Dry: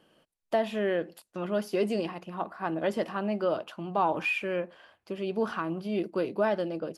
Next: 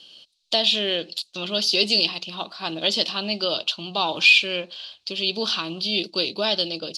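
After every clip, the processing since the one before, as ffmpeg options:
-af "lowpass=f=4100:t=q:w=3.4,aexciter=amount=11.6:drive=5.8:freq=2800"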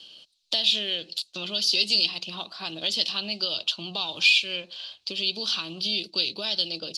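-filter_complex "[0:a]acrossover=split=120|2500[s0][s1][s2];[s1]acompressor=threshold=0.0178:ratio=6[s3];[s2]aphaser=in_gain=1:out_gain=1:delay=2:decay=0.26:speed=0.32:type=sinusoidal[s4];[s0][s3][s4]amix=inputs=3:normalize=0,volume=0.891"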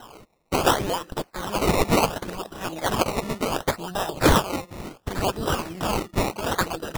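-af "acrusher=samples=19:mix=1:aa=0.000001:lfo=1:lforange=19:lforate=0.69,volume=1.41"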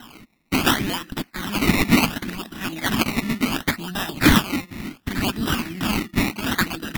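-af "equalizer=f=250:t=o:w=1:g=12,equalizer=f=500:t=o:w=1:g=-12,equalizer=f=1000:t=o:w=1:g=-3,equalizer=f=2000:t=o:w=1:g=9,equalizer=f=4000:t=o:w=1:g=3,equalizer=f=8000:t=o:w=1:g=-3,equalizer=f=16000:t=o:w=1:g=7"

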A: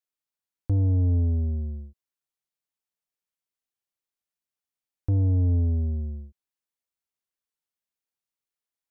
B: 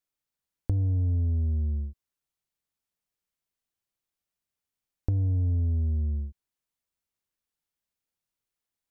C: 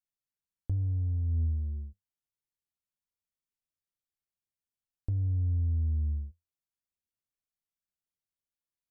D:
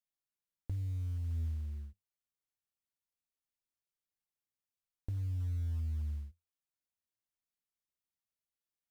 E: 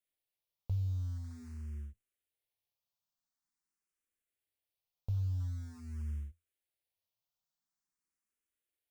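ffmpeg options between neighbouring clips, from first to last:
-af "lowshelf=f=190:g=8.5,acompressor=threshold=0.0447:ratio=5,volume=1.19"
-af "bass=f=250:g=6,treble=f=4000:g=2,flanger=delay=8.4:depth=4.5:regen=62:speed=0.41:shape=triangular,volume=0.422"
-filter_complex "[0:a]asplit=2[s0][s1];[s1]acompressor=threshold=0.0112:ratio=4,volume=0.794[s2];[s0][s2]amix=inputs=2:normalize=0,acrusher=bits=8:mode=log:mix=0:aa=0.000001,volume=0.355"
-filter_complex "[0:a]asplit=2[s0][s1];[s1]afreqshift=0.46[s2];[s0][s2]amix=inputs=2:normalize=1,volume=1.58"

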